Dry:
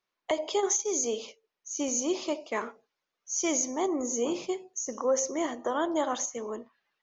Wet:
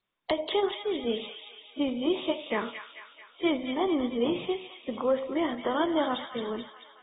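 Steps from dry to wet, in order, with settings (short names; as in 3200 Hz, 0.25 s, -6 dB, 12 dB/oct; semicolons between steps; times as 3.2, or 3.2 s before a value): tone controls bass +9 dB, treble +13 dB; thin delay 0.22 s, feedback 59%, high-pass 1700 Hz, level -4.5 dB; AAC 16 kbps 32000 Hz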